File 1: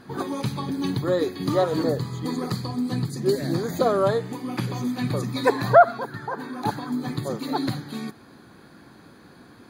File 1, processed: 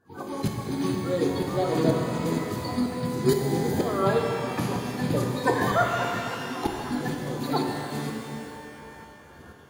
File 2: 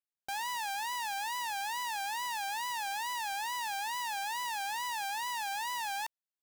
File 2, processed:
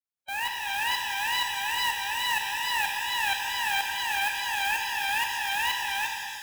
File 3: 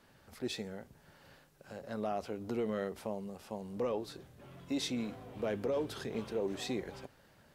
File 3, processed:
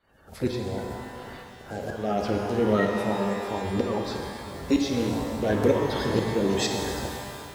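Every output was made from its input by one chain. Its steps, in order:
coarse spectral quantiser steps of 30 dB; peaking EQ 64 Hz +7.5 dB 1.3 oct; tremolo saw up 2.1 Hz, depth 90%; level rider gain up to 4 dB; pitch-shifted reverb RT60 2.4 s, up +12 st, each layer -8 dB, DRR 1.5 dB; normalise loudness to -27 LUFS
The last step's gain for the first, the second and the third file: -2.5 dB, +6.0 dB, +10.5 dB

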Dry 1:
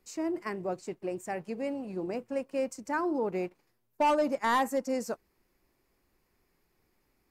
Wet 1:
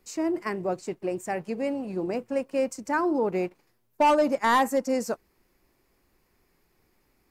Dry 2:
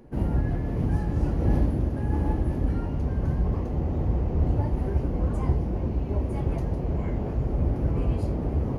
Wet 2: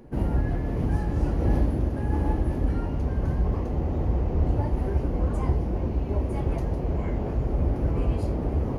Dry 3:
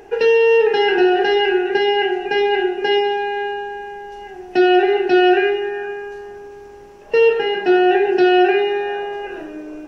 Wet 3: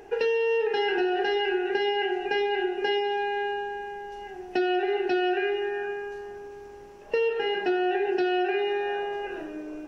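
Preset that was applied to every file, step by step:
dynamic bell 140 Hz, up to -4 dB, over -31 dBFS, Q 0.76; compression, threshold -17 dBFS; normalise loudness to -27 LUFS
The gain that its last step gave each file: +5.0 dB, +2.0 dB, -5.0 dB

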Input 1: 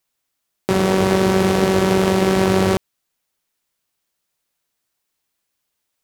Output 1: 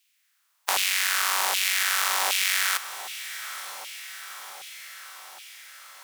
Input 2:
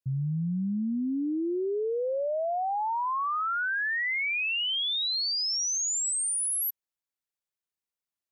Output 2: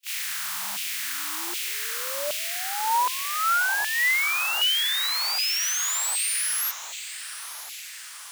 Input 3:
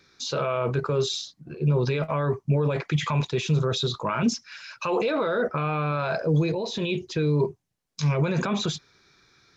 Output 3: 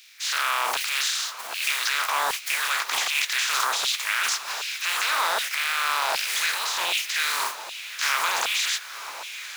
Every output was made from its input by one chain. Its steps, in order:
spectral contrast reduction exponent 0.31; transient shaper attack -7 dB, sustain +8 dB; compression 3:1, threshold -32 dBFS; on a send: echo that smears into a reverb 1012 ms, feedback 62%, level -13 dB; on the sum: LFO high-pass saw down 1.3 Hz 760–2800 Hz; normalise loudness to -24 LUFS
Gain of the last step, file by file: +5.5 dB, +6.5 dB, +7.0 dB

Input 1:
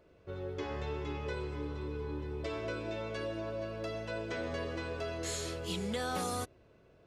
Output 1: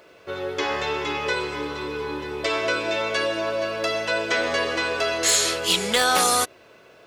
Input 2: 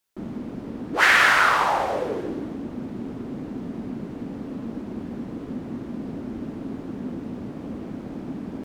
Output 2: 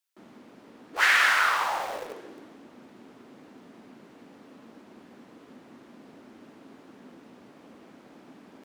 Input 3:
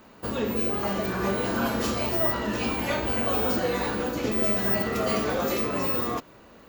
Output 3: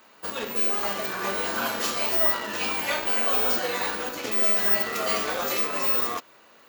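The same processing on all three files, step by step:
high-pass 1.2 kHz 6 dB/octave; in parallel at -9.5 dB: bit crusher 5-bit; on the sum: normalise loudness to -23 LUFS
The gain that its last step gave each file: +20.5 dB, -5.0 dB, +2.5 dB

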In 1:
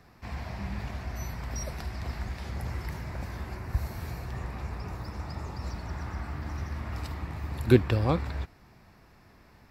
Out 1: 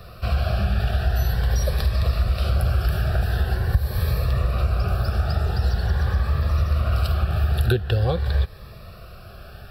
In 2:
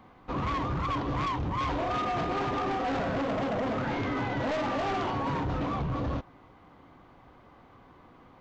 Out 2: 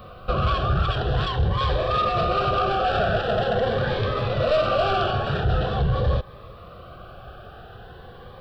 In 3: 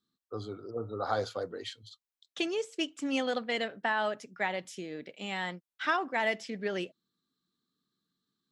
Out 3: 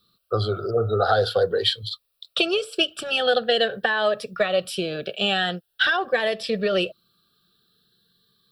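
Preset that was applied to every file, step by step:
peaking EQ 160 Hz -3 dB 0.85 oct; compression 4:1, threshold -35 dBFS; static phaser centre 1.4 kHz, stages 8; Shepard-style phaser rising 0.45 Hz; normalise loudness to -23 LUFS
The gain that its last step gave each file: +19.5 dB, +18.5 dB, +22.5 dB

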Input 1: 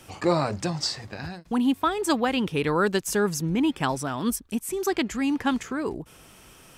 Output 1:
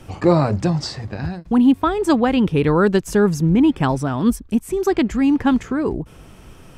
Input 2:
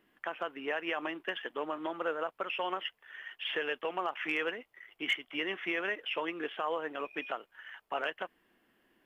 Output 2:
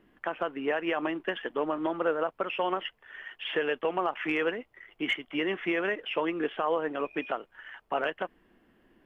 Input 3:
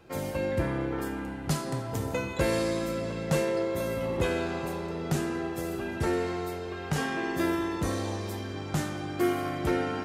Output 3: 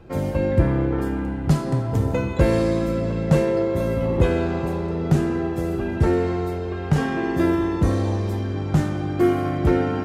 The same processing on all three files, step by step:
tilt EQ -2.5 dB/octave; trim +4.5 dB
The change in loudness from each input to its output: +7.5 LU, +4.5 LU, +8.5 LU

